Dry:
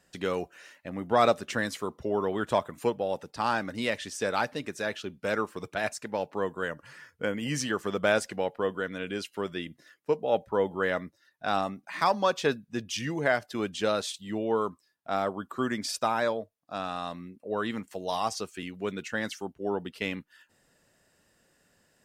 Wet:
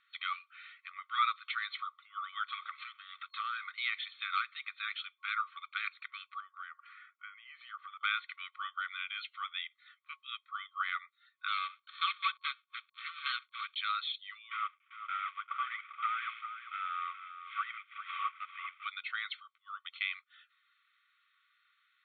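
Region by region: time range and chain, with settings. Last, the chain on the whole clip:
2.54–3.62 HPF 210 Hz + compressor 5:1, threshold -35 dBFS + sample leveller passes 2
6.4–8.01 tilt -4.5 dB/oct + compressor 2.5:1, threshold -34 dBFS
11.48–13.76 switching dead time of 0.22 ms + notch 2000 Hz, Q 8.2 + Doppler distortion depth 0.13 ms
14.51–18.85 CVSD 16 kbps + echo 0.395 s -12.5 dB
whole clip: FFT band-pass 1100–4300 Hz; comb 0.9 ms, depth 84%; compressor 1.5:1, threshold -36 dBFS

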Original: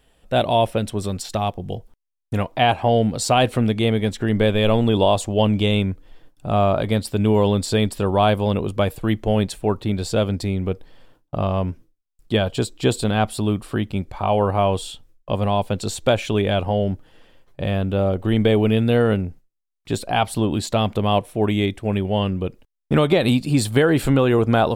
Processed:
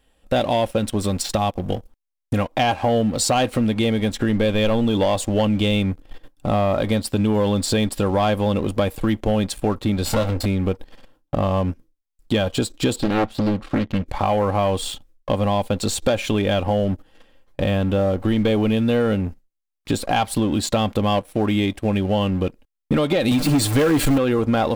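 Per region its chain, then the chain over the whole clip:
10.05–10.46 minimum comb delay 1.4 ms + doubler 22 ms -10.5 dB
12.96–14.06 LPF 3600 Hz + Doppler distortion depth 1 ms
23.31–24.18 zero-crossing step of -22 dBFS + comb 6.7 ms, depth 80%
whole clip: comb 3.7 ms, depth 35%; sample leveller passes 2; compressor 3:1, threshold -19 dBFS

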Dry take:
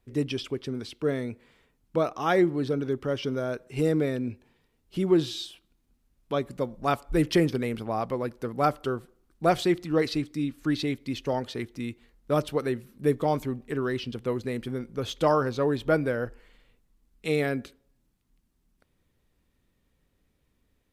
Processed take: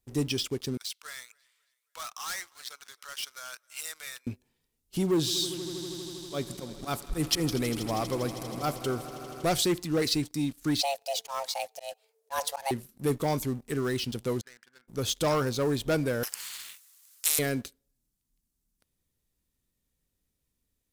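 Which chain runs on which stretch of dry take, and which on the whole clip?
0.77–4.27 HPF 1100 Hz 24 dB/oct + overloaded stage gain 35 dB + feedback echo 0.271 s, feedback 42%, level -18 dB
5.09–9.44 auto swell 0.123 s + swelling echo 80 ms, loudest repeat 5, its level -18 dB
10.81–12.71 frequency shift +410 Hz + auto swell 0.132 s
14.41–14.88 G.711 law mismatch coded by mu + band-pass 1600 Hz, Q 6.1
16.23–17.39 HPF 1200 Hz 24 dB/oct + spectral compressor 4:1
whole clip: sample leveller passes 2; tone controls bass +3 dB, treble +15 dB; gain -9 dB

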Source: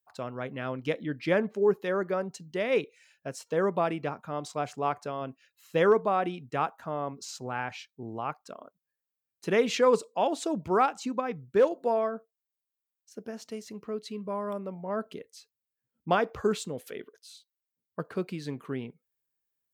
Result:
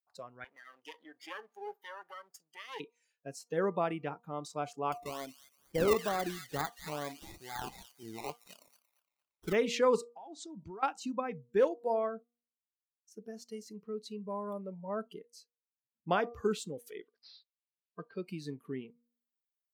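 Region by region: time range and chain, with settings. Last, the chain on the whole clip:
0.44–2.8 minimum comb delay 0.58 ms + HPF 540 Hz + compressor 1.5:1, threshold -46 dBFS
4.92–9.53 decimation with a swept rate 22×, swing 60% 2.2 Hz + thin delay 0.23 s, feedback 41%, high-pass 1400 Hz, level -10.5 dB
10.04–10.83 LPF 7700 Hz 24 dB/oct + dynamic EQ 2600 Hz, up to -6 dB, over -56 dBFS, Q 3.5 + compressor 8:1, threshold -37 dBFS
17–18.28 low shelf 470 Hz -5.5 dB + careless resampling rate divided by 4×, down none, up filtered
whole clip: de-hum 237.6 Hz, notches 5; spectral noise reduction 14 dB; de-esser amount 60%; gain -4.5 dB

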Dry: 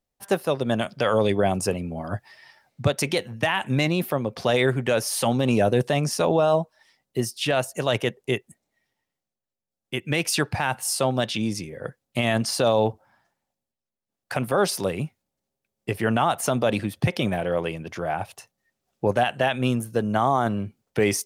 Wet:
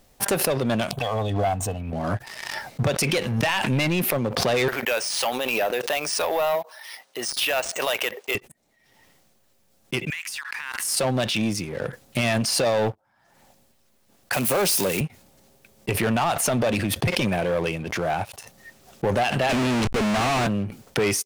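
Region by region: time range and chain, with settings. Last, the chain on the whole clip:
0.91–1.93 fixed phaser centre 1400 Hz, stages 6 + comb 2.7 ms, depth 61% + envelope phaser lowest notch 300 Hz, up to 2200 Hz, full sweep at -26.5 dBFS
4.68–8.35 HPF 690 Hz + careless resampling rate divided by 3×, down filtered, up hold
10.1–10.97 Chebyshev high-pass 1000 Hz, order 5 + bell 1900 Hz +7.5 dB 0.42 oct + compressor 16:1, threshold -33 dBFS
14.33–15.01 switching spikes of -18.5 dBFS + HPF 140 Hz
19.49–20.47 Bessel high-pass 190 Hz, order 8 + Schmitt trigger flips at -38 dBFS + decimation joined by straight lines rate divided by 3×
whole clip: dynamic EQ 2500 Hz, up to +5 dB, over -44 dBFS, Q 3; sample leveller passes 3; backwards sustainer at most 35 dB/s; gain -8 dB

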